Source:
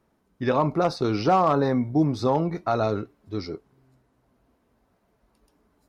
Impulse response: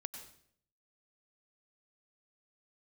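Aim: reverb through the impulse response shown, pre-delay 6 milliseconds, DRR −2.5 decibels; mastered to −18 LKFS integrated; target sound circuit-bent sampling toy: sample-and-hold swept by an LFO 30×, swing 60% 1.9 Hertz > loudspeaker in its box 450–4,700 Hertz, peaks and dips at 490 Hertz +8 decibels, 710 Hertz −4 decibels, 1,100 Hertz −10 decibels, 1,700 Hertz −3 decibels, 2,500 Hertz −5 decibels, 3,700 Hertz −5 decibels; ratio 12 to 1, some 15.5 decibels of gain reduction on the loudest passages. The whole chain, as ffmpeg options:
-filter_complex "[0:a]acompressor=threshold=-32dB:ratio=12,asplit=2[link_01][link_02];[1:a]atrim=start_sample=2205,adelay=6[link_03];[link_02][link_03]afir=irnorm=-1:irlink=0,volume=5dB[link_04];[link_01][link_04]amix=inputs=2:normalize=0,acrusher=samples=30:mix=1:aa=0.000001:lfo=1:lforange=18:lforate=1.9,highpass=450,equalizer=frequency=490:width_type=q:width=4:gain=8,equalizer=frequency=710:width_type=q:width=4:gain=-4,equalizer=frequency=1100:width_type=q:width=4:gain=-10,equalizer=frequency=1700:width_type=q:width=4:gain=-3,equalizer=frequency=2500:width_type=q:width=4:gain=-5,equalizer=frequency=3700:width_type=q:width=4:gain=-5,lowpass=frequency=4700:width=0.5412,lowpass=frequency=4700:width=1.3066,volume=18dB"

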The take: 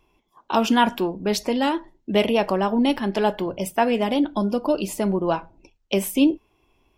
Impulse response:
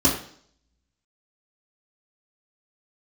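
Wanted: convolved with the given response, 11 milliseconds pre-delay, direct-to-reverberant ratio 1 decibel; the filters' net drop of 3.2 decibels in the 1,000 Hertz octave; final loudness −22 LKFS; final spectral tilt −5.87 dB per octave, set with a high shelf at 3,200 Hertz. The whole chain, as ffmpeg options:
-filter_complex "[0:a]equalizer=frequency=1000:width_type=o:gain=-3.5,highshelf=frequency=3200:gain=-5,asplit=2[link_01][link_02];[1:a]atrim=start_sample=2205,adelay=11[link_03];[link_02][link_03]afir=irnorm=-1:irlink=0,volume=-17dB[link_04];[link_01][link_04]amix=inputs=2:normalize=0,volume=-7dB"

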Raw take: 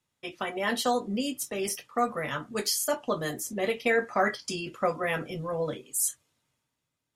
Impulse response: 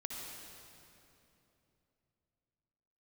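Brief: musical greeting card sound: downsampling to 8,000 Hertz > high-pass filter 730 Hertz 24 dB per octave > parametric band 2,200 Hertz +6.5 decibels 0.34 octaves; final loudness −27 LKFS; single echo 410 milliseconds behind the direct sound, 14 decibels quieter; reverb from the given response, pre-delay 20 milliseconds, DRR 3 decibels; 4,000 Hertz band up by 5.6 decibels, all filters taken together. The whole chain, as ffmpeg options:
-filter_complex "[0:a]equalizer=frequency=4000:width_type=o:gain=7,aecho=1:1:410:0.2,asplit=2[link_01][link_02];[1:a]atrim=start_sample=2205,adelay=20[link_03];[link_02][link_03]afir=irnorm=-1:irlink=0,volume=-3dB[link_04];[link_01][link_04]amix=inputs=2:normalize=0,aresample=8000,aresample=44100,highpass=frequency=730:width=0.5412,highpass=frequency=730:width=1.3066,equalizer=frequency=2200:width_type=o:width=0.34:gain=6.5,volume=2.5dB"

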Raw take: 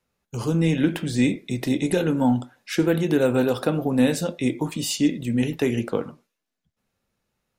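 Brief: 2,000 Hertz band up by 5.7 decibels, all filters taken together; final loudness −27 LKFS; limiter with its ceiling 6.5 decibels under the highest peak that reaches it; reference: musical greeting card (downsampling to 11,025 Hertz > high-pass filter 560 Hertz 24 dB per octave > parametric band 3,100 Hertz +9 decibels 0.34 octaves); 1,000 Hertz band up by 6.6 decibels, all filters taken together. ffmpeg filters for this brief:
ffmpeg -i in.wav -af "equalizer=frequency=1000:width_type=o:gain=8,equalizer=frequency=2000:width_type=o:gain=3.5,alimiter=limit=-11dB:level=0:latency=1,aresample=11025,aresample=44100,highpass=frequency=560:width=0.5412,highpass=frequency=560:width=1.3066,equalizer=frequency=3100:width_type=o:width=0.34:gain=9,volume=1.5dB" out.wav

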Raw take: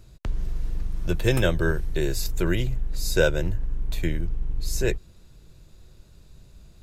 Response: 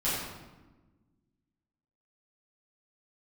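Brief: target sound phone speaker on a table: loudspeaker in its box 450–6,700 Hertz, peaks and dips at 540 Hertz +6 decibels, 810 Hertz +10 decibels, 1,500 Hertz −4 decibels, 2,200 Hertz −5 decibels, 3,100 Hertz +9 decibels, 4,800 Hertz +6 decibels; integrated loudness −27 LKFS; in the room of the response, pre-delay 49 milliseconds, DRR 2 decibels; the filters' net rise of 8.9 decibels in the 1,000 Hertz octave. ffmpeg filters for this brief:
-filter_complex "[0:a]equalizer=frequency=1000:width_type=o:gain=7,asplit=2[link_01][link_02];[1:a]atrim=start_sample=2205,adelay=49[link_03];[link_02][link_03]afir=irnorm=-1:irlink=0,volume=-11.5dB[link_04];[link_01][link_04]amix=inputs=2:normalize=0,highpass=frequency=450:width=0.5412,highpass=frequency=450:width=1.3066,equalizer=frequency=540:width_type=q:width=4:gain=6,equalizer=frequency=810:width_type=q:width=4:gain=10,equalizer=frequency=1500:width_type=q:width=4:gain=-4,equalizer=frequency=2200:width_type=q:width=4:gain=-5,equalizer=frequency=3100:width_type=q:width=4:gain=9,equalizer=frequency=4800:width_type=q:width=4:gain=6,lowpass=frequency=6700:width=0.5412,lowpass=frequency=6700:width=1.3066,volume=-3dB"

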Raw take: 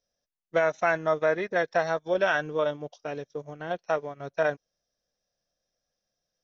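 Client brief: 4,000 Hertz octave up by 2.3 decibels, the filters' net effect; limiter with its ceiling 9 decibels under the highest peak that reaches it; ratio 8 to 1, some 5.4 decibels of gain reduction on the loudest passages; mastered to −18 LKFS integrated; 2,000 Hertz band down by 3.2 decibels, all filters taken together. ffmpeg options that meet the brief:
ffmpeg -i in.wav -af "equalizer=frequency=2000:width_type=o:gain=-5.5,equalizer=frequency=4000:width_type=o:gain=5,acompressor=threshold=-25dB:ratio=8,volume=18.5dB,alimiter=limit=-6dB:level=0:latency=1" out.wav

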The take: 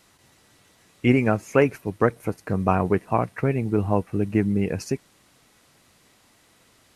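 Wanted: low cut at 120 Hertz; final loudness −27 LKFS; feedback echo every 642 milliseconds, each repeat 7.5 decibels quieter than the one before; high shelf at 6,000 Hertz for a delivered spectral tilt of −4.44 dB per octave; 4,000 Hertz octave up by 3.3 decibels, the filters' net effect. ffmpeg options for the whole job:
ffmpeg -i in.wav -af "highpass=120,equalizer=frequency=4000:width_type=o:gain=8,highshelf=frequency=6000:gain=-6.5,aecho=1:1:642|1284|1926|2568|3210:0.422|0.177|0.0744|0.0312|0.0131,volume=-3.5dB" out.wav

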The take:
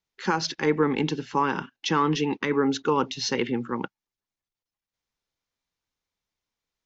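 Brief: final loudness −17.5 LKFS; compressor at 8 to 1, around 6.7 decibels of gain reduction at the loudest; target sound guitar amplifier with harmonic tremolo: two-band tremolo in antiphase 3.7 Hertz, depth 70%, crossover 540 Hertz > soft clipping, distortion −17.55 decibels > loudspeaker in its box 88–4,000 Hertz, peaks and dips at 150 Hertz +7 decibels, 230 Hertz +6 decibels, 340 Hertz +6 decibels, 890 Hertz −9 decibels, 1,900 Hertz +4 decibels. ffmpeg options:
ffmpeg -i in.wav -filter_complex "[0:a]acompressor=threshold=-24dB:ratio=8,acrossover=split=540[link_01][link_02];[link_01]aeval=exprs='val(0)*(1-0.7/2+0.7/2*cos(2*PI*3.7*n/s))':channel_layout=same[link_03];[link_02]aeval=exprs='val(0)*(1-0.7/2-0.7/2*cos(2*PI*3.7*n/s))':channel_layout=same[link_04];[link_03][link_04]amix=inputs=2:normalize=0,asoftclip=threshold=-23.5dB,highpass=88,equalizer=frequency=150:width_type=q:width=4:gain=7,equalizer=frequency=230:width_type=q:width=4:gain=6,equalizer=frequency=340:width_type=q:width=4:gain=6,equalizer=frequency=890:width_type=q:width=4:gain=-9,equalizer=frequency=1900:width_type=q:width=4:gain=4,lowpass=frequency=4000:width=0.5412,lowpass=frequency=4000:width=1.3066,volume=15dB" out.wav

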